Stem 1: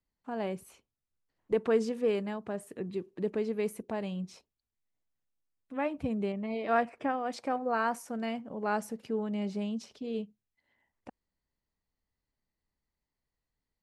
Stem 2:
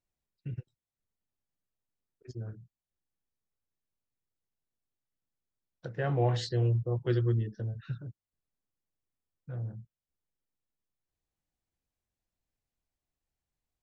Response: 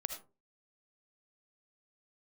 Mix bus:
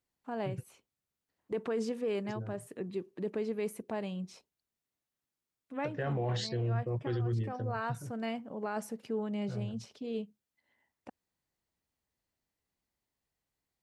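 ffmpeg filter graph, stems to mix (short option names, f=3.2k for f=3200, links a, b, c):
-filter_complex "[0:a]volume=-1dB[a];[1:a]volume=0.5dB,asplit=2[b][c];[c]apad=whole_len=609721[d];[a][d]sidechaincompress=threshold=-36dB:ratio=8:attack=6.4:release=426[e];[e][b]amix=inputs=2:normalize=0,highpass=f=110:p=1,alimiter=level_in=2dB:limit=-24dB:level=0:latency=1:release=11,volume=-2dB"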